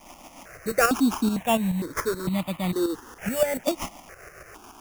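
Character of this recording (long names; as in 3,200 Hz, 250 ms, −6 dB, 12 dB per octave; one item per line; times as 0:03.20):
a quantiser's noise floor 8 bits, dither triangular
tremolo saw up 7 Hz, depth 60%
aliases and images of a low sample rate 4,100 Hz, jitter 0%
notches that jump at a steady rate 2.2 Hz 430–1,600 Hz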